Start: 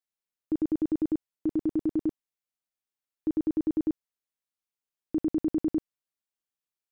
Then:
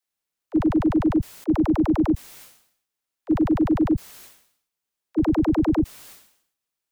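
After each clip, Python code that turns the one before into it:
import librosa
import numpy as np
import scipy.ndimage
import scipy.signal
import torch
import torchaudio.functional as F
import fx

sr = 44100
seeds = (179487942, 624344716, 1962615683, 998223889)

y = fx.dispersion(x, sr, late='lows', ms=54.0, hz=350.0)
y = fx.sustainer(y, sr, db_per_s=89.0)
y = y * librosa.db_to_amplitude(7.5)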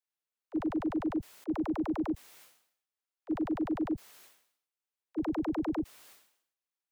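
y = fx.bass_treble(x, sr, bass_db=-10, treble_db=-3)
y = y * librosa.db_to_amplitude(-8.5)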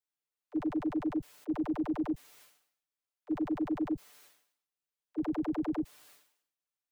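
y = x + 0.78 * np.pad(x, (int(6.8 * sr / 1000.0), 0))[:len(x)]
y = y * librosa.db_to_amplitude(-4.5)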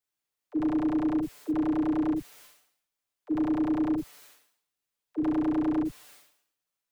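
y = fx.room_early_taps(x, sr, ms=(33, 68), db=(-6.5, -4.0))
y = y * librosa.db_to_amplitude(3.5)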